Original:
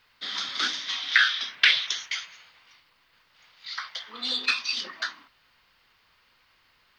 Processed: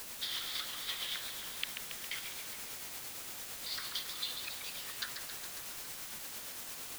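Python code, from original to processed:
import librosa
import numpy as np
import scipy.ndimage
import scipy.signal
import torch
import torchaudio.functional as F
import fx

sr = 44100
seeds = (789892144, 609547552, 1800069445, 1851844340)

p1 = fx.env_lowpass_down(x, sr, base_hz=410.0, full_db=-21.5)
p2 = np.diff(p1, prepend=0.0)
p3 = fx.quant_dither(p2, sr, seeds[0], bits=6, dither='triangular')
p4 = p2 + (p3 * 10.0 ** (-9.0 / 20.0))
p5 = p4 * (1.0 - 0.34 / 2.0 + 0.34 / 2.0 * np.cos(2.0 * np.pi * 8.8 * (np.arange(len(p4)) / sr)))
p6 = fx.echo_warbled(p5, sr, ms=137, feedback_pct=70, rate_hz=2.8, cents=171, wet_db=-7.5)
y = p6 * 10.0 ** (1.0 / 20.0)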